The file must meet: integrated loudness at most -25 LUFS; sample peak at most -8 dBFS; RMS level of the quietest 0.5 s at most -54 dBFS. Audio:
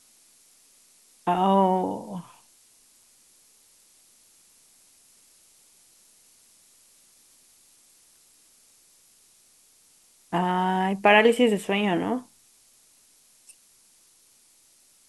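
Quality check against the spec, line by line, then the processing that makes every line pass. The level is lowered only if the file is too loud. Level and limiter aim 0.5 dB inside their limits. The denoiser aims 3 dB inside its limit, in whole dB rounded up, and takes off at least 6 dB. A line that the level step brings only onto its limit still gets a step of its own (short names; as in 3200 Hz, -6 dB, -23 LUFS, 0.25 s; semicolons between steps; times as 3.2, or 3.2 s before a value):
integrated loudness -23.0 LUFS: fail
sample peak -6.0 dBFS: fail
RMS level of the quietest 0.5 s -59 dBFS: OK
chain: gain -2.5 dB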